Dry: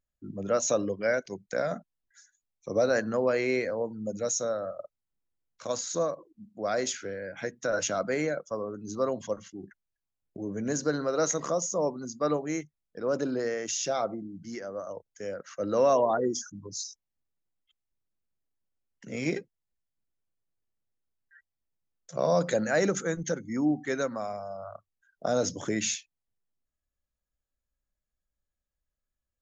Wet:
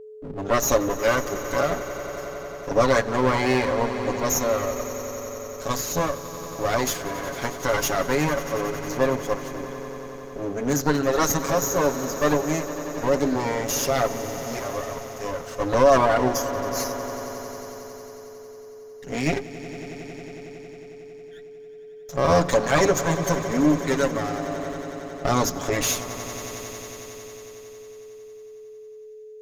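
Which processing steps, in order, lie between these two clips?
lower of the sound and its delayed copy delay 7.2 ms
echo that builds up and dies away 91 ms, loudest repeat 5, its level −17 dB
steady tone 430 Hz −47 dBFS
level +7.5 dB

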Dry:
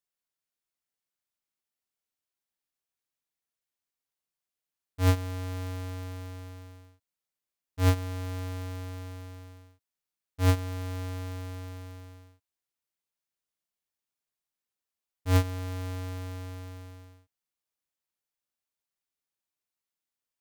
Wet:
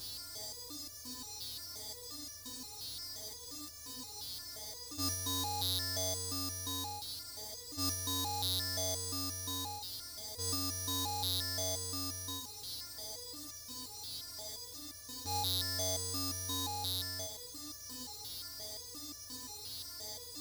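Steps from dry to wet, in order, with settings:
compressor on every frequency bin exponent 0.2
high shelf with overshoot 3,400 Hz +11 dB, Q 3
step-sequenced resonator 5.7 Hz 180–580 Hz
level +3 dB

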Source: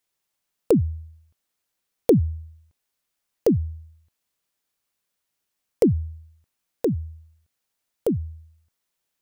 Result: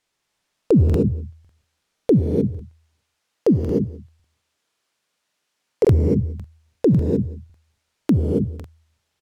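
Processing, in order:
0:02.11–0:05.85: high-pass filter 200 Hz 6 dB per octave
brickwall limiter −17.5 dBFS, peak gain reduction 11 dB
high-frequency loss of the air 57 metres
single-tap delay 182 ms −21.5 dB
reverb whose tail is shaped and stops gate 330 ms rising, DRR 3 dB
regular buffer underruns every 0.55 s, samples 2,048, repeat, from 0:00.85
level +8.5 dB

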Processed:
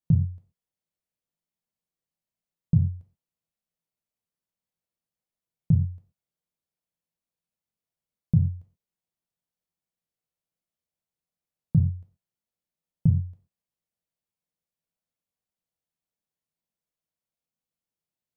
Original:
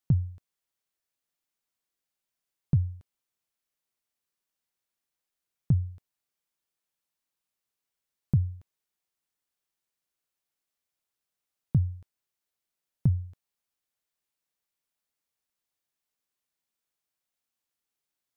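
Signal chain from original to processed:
drawn EQ curve 110 Hz 0 dB, 180 Hz +7 dB, 270 Hz −5 dB, 500 Hz −1 dB, 1,400 Hz −10 dB
reverb whose tail is shaped and stops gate 150 ms falling, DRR 3 dB

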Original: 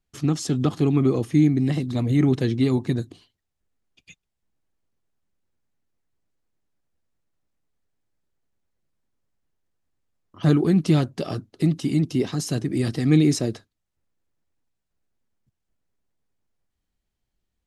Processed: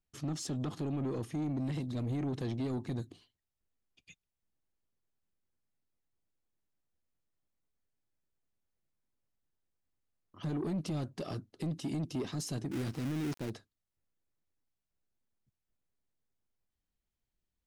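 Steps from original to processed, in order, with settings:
0:12.71–0:13.50: gap after every zero crossing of 0.29 ms
brickwall limiter −15 dBFS, peak gain reduction 8.5 dB
soft clipping −21.5 dBFS, distortion −13 dB
level −8.5 dB

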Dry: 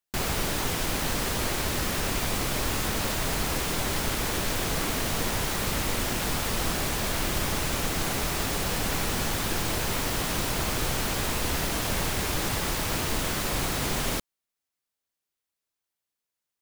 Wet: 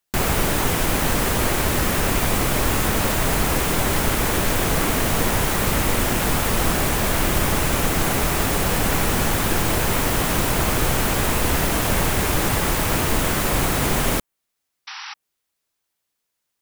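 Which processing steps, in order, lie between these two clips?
sound drawn into the spectrogram noise, 0:14.87–0:15.14, 770–5,900 Hz −40 dBFS
dynamic equaliser 4,600 Hz, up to −6 dB, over −49 dBFS, Q 0.96
level +8.5 dB

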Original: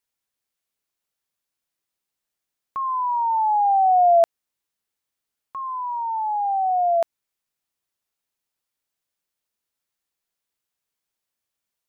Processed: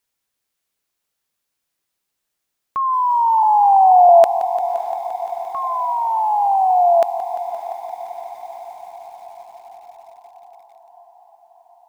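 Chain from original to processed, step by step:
0:03.43–0:04.09: low-pass filter 1,200 Hz 24 dB per octave
on a send: feedback delay with all-pass diffusion 608 ms, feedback 68%, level −15 dB
on the sum: feedback echo at a low word length 173 ms, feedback 80%, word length 8 bits, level −14.5 dB
level +6 dB

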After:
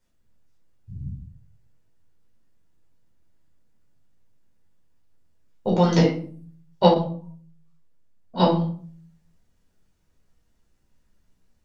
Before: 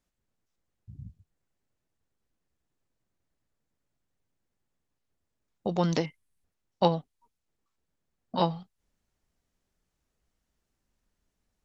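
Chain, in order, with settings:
rectangular room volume 440 cubic metres, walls furnished, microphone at 4.7 metres
0:06.94–0:08.40: micro pitch shift up and down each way 14 cents

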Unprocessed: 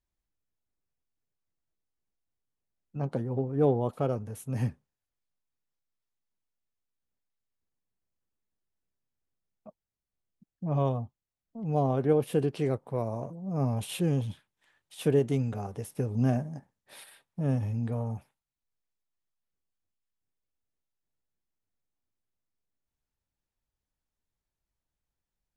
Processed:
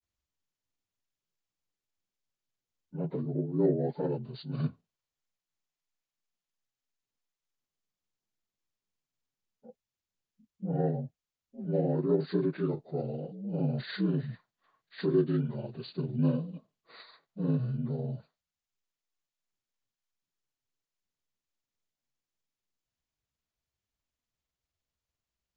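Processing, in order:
partials spread apart or drawn together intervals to 76%
granular cloud 100 ms, grains 20 per second, spray 15 ms, pitch spread up and down by 0 semitones

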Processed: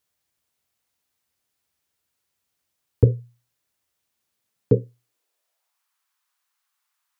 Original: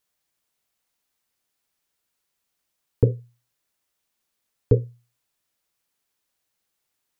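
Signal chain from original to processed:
high-pass filter sweep 74 Hz → 1,100 Hz, 0:04.21–0:05.87

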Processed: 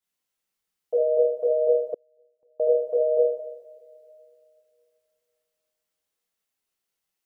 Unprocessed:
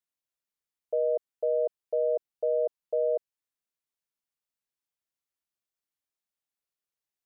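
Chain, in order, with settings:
coupled-rooms reverb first 0.79 s, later 2.8 s, from −20 dB, DRR −8 dB
0:01.94–0:02.60: gate with flip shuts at −27 dBFS, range −41 dB

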